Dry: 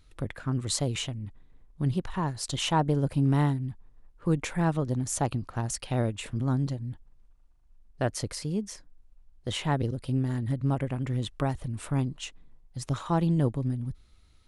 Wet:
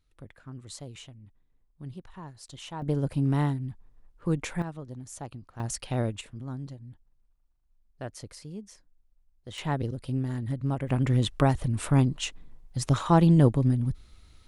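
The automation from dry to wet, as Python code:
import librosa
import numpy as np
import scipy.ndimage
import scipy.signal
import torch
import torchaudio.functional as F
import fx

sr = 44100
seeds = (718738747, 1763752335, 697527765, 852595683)

y = fx.gain(x, sr, db=fx.steps((0.0, -13.5), (2.82, -1.5), (4.62, -12.0), (5.6, -1.0), (6.21, -10.0), (9.58, -2.0), (10.89, 6.0)))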